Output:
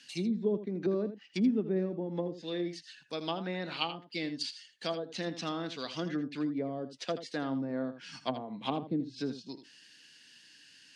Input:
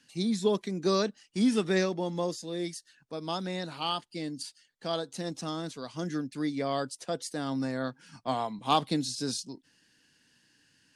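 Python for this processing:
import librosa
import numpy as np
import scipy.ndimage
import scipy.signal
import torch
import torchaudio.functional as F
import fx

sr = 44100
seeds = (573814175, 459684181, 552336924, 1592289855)

y = fx.env_lowpass_down(x, sr, base_hz=390.0, full_db=-26.5)
y = fx.weighting(y, sr, curve='D')
y = y + 10.0 ** (-12.0 / 20.0) * np.pad(y, (int(81 * sr / 1000.0), 0))[:len(y)]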